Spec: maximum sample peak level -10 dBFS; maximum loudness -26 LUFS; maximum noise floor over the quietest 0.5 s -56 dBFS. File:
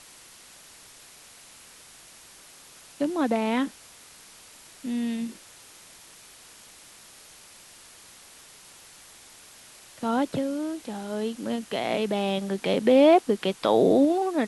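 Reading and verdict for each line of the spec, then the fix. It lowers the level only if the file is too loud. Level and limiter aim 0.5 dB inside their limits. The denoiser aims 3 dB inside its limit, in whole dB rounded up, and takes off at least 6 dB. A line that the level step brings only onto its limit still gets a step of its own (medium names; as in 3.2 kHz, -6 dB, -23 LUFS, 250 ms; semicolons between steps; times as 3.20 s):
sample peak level -7.5 dBFS: fail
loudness -25.0 LUFS: fail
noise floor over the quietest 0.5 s -50 dBFS: fail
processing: noise reduction 8 dB, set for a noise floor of -50 dBFS; trim -1.5 dB; peak limiter -10.5 dBFS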